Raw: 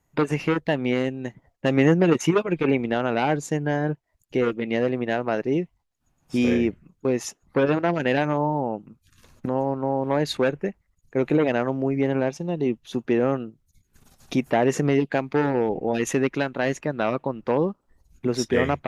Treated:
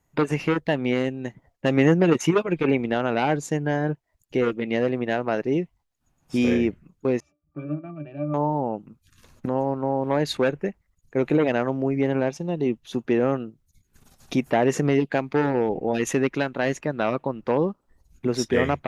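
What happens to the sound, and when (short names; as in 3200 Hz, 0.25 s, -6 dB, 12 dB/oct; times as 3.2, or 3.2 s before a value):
7.2–8.34 octave resonator D, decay 0.19 s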